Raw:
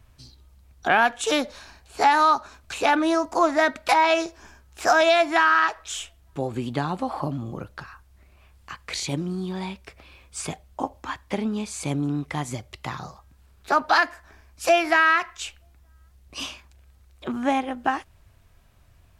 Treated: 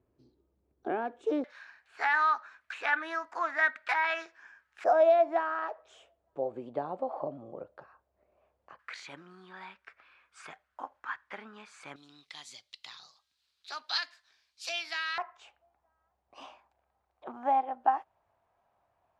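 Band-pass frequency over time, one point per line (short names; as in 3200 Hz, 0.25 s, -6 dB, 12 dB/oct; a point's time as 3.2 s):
band-pass, Q 3.1
370 Hz
from 1.44 s 1700 Hz
from 4.84 s 570 Hz
from 8.79 s 1500 Hz
from 11.96 s 4100 Hz
from 15.18 s 790 Hz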